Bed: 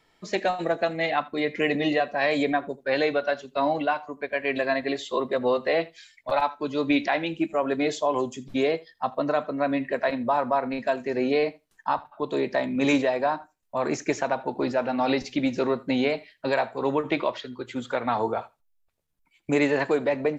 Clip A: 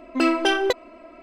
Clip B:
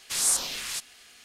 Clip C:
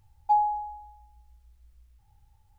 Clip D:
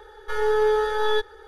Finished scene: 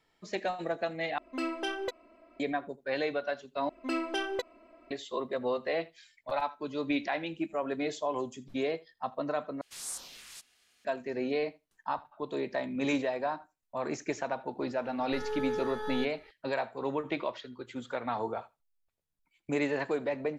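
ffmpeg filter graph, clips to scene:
-filter_complex "[1:a]asplit=2[s0][s1];[0:a]volume=0.398,asplit=4[s2][s3][s4][s5];[s2]atrim=end=1.184[s6];[s0]atrim=end=1.22,asetpts=PTS-STARTPTS,volume=0.2[s7];[s3]atrim=start=2.396:end=3.694[s8];[s1]atrim=end=1.22,asetpts=PTS-STARTPTS,volume=0.237[s9];[s4]atrim=start=4.906:end=9.614[s10];[2:a]atrim=end=1.24,asetpts=PTS-STARTPTS,volume=0.168[s11];[s5]atrim=start=10.846[s12];[4:a]atrim=end=1.47,asetpts=PTS-STARTPTS,volume=0.211,afade=t=in:d=0.004:c=hsin,afade=t=out:st=1.466:d=0.004:c=hsin,adelay=14840[s13];[s6][s7]acrossfade=d=0.004:c1=hsin:c2=hsin[s14];[s14][s8]acrossfade=d=0.004:c1=hsin:c2=hsin[s15];[s15][s9]acrossfade=d=0.004:c1=hsin:c2=hsin[s16];[s16][s10]acrossfade=d=0.004:c1=hsin:c2=hsin[s17];[s17][s11]acrossfade=d=0.004:c1=hsin:c2=hsin[s18];[s18][s12]acrossfade=d=0.004:c1=hsin:c2=hsin[s19];[s19][s13]amix=inputs=2:normalize=0"

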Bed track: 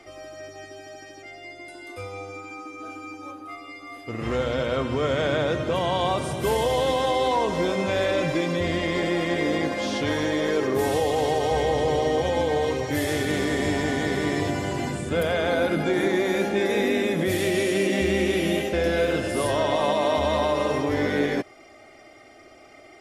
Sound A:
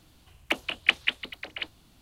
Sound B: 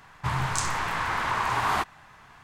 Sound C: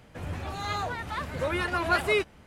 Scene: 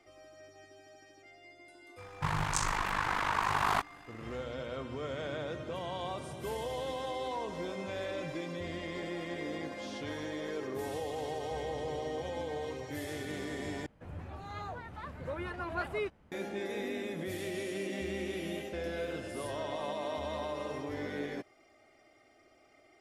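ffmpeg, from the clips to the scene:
-filter_complex "[0:a]volume=0.188[s0];[2:a]aeval=exprs='val(0)*sin(2*PI*25*n/s)':c=same[s1];[3:a]highshelf=f=2300:g=-11.5[s2];[s0]asplit=2[s3][s4];[s3]atrim=end=13.864[s5];[s2]atrim=end=2.46,asetpts=PTS-STARTPTS,volume=0.376[s6];[s4]atrim=start=16.316[s7];[s1]atrim=end=2.43,asetpts=PTS-STARTPTS,volume=0.841,afade=t=in:d=0.004:c=hsin,afade=t=out:st=2.426:d=0.004:c=hsin,adelay=1980[s8];[s5][s6]acrossfade=d=0.004:c1=hsin:c2=hsin[s9];[s9][s7]acrossfade=d=0.004:c1=hsin:c2=hsin[s10];[s10][s8]amix=inputs=2:normalize=0"

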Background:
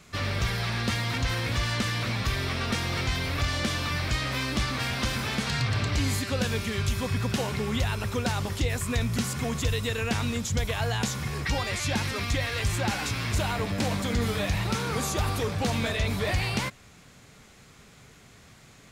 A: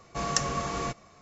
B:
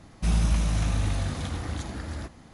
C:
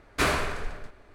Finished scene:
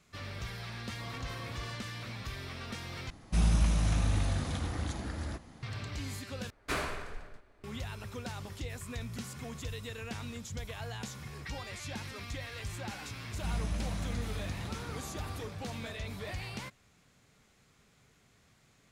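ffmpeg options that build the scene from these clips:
-filter_complex "[2:a]asplit=2[s0][s1];[0:a]volume=0.224[s2];[1:a]lowpass=1600[s3];[s2]asplit=3[s4][s5][s6];[s4]atrim=end=3.104[s7];[s0]atrim=end=2.53,asetpts=PTS-STARTPTS,volume=0.708[s8];[s5]atrim=start=5.626:end=6.504[s9];[3:a]atrim=end=1.14,asetpts=PTS-STARTPTS,volume=0.335[s10];[s6]atrim=start=7.636[s11];[s3]atrim=end=1.21,asetpts=PTS-STARTPTS,volume=0.158,afade=t=in:d=0.004:c=hsin,afade=t=out:st=1.206:d=0.004:c=hsin,adelay=840[s12];[s1]atrim=end=2.53,asetpts=PTS-STARTPTS,volume=0.266,afade=t=in:d=0.004:c=hsin,afade=t=out:st=2.526:d=0.004:c=hsin,adelay=13200[s13];[s7][s8]acrossfade=d=0.004:c1=hsin:c2=hsin[s14];[s14][s9]acrossfade=d=0.004:c1=hsin:c2=hsin[s15];[s15][s10]acrossfade=d=0.004:c1=hsin:c2=hsin[s16];[s16][s11]acrossfade=d=0.004:c1=hsin:c2=hsin[s17];[s17][s12][s13]amix=inputs=3:normalize=0"

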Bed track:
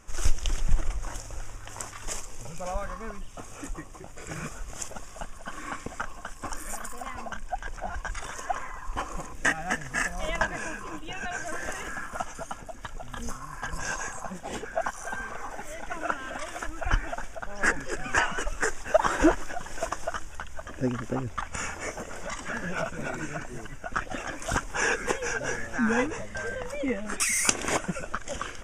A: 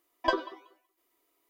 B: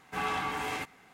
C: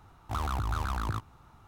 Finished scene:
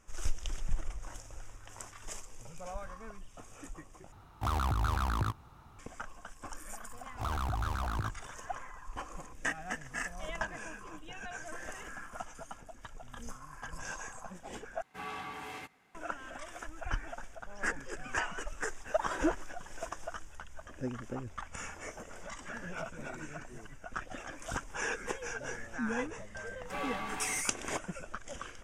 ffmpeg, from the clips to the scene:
-filter_complex "[3:a]asplit=2[s0][s1];[2:a]asplit=2[s2][s3];[0:a]volume=0.335[s4];[s0]acontrast=36[s5];[s2]aresample=32000,aresample=44100[s6];[s4]asplit=3[s7][s8][s9];[s7]atrim=end=4.124[s10];[s5]atrim=end=1.67,asetpts=PTS-STARTPTS,volume=0.562[s11];[s8]atrim=start=5.786:end=14.824[s12];[s6]atrim=end=1.13,asetpts=PTS-STARTPTS,volume=0.335[s13];[s9]atrim=start=15.946[s14];[s1]atrim=end=1.67,asetpts=PTS-STARTPTS,volume=0.708,afade=t=in:d=0.004:c=hsin,afade=t=out:st=1.666:d=0.004:c=hsin,adelay=304290S[s15];[1:a]atrim=end=1.49,asetpts=PTS-STARTPTS,volume=0.141,afade=t=in:d=0.004:c=hsin,afade=t=out:st=1.486:d=0.004:c=hsin,adelay=18830[s16];[s3]atrim=end=1.13,asetpts=PTS-STARTPTS,volume=0.473,afade=t=in:d=0.004:c=hsin,afade=t=out:st=1.126:d=0.004:c=hsin,adelay=26570[s17];[s10][s11]acrossfade=d=0.004:c1=hsin:c2=hsin[s18];[s18][s12]acrossfade=d=0.004:c1=hsin:c2=hsin[s19];[s19][s13]acrossfade=d=0.004:c1=hsin:c2=hsin[s20];[s20][s14]acrossfade=d=0.004:c1=hsin:c2=hsin[s21];[s21][s15][s16][s17]amix=inputs=4:normalize=0"

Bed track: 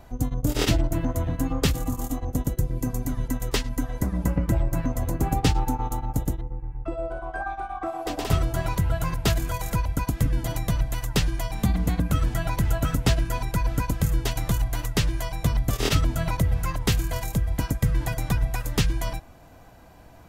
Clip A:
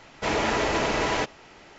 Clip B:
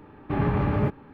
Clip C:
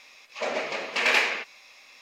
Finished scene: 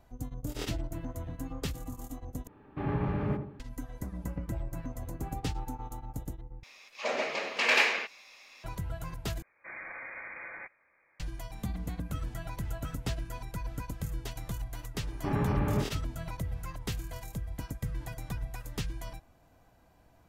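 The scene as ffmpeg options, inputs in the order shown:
-filter_complex "[2:a]asplit=2[s0][s1];[0:a]volume=0.224[s2];[s0]asplit=2[s3][s4];[s4]adelay=82,lowpass=f=870:p=1,volume=0.501,asplit=2[s5][s6];[s6]adelay=82,lowpass=f=870:p=1,volume=0.38,asplit=2[s7][s8];[s8]adelay=82,lowpass=f=870:p=1,volume=0.38,asplit=2[s9][s10];[s10]adelay=82,lowpass=f=870:p=1,volume=0.38,asplit=2[s11][s12];[s12]adelay=82,lowpass=f=870:p=1,volume=0.38[s13];[s3][s5][s7][s9][s11][s13]amix=inputs=6:normalize=0[s14];[1:a]lowpass=f=2100:t=q:w=0.5098,lowpass=f=2100:t=q:w=0.6013,lowpass=f=2100:t=q:w=0.9,lowpass=f=2100:t=q:w=2.563,afreqshift=-2500[s15];[s2]asplit=4[s16][s17][s18][s19];[s16]atrim=end=2.474[s20];[s14]atrim=end=1.13,asetpts=PTS-STARTPTS,volume=0.376[s21];[s17]atrim=start=3.596:end=6.634[s22];[3:a]atrim=end=2.01,asetpts=PTS-STARTPTS,volume=0.75[s23];[s18]atrim=start=8.636:end=9.424[s24];[s15]atrim=end=1.78,asetpts=PTS-STARTPTS,volume=0.126[s25];[s19]atrim=start=11.196[s26];[s1]atrim=end=1.13,asetpts=PTS-STARTPTS,volume=0.531,afade=t=in:d=0.004:c=hsin,afade=t=out:st=1.126:d=0.004:c=hsin,adelay=14940[s27];[s20][s21]acrossfade=d=0.004:c1=hsin:c2=hsin[s28];[s28][s22]acrossfade=d=0.004:c1=hsin:c2=hsin[s29];[s29][s23]acrossfade=d=0.004:c1=hsin:c2=hsin[s30];[s30][s24]acrossfade=d=0.004:c1=hsin:c2=hsin[s31];[s31][s25]acrossfade=d=0.004:c1=hsin:c2=hsin[s32];[s32][s26]acrossfade=d=0.004:c1=hsin:c2=hsin[s33];[s33][s27]amix=inputs=2:normalize=0"

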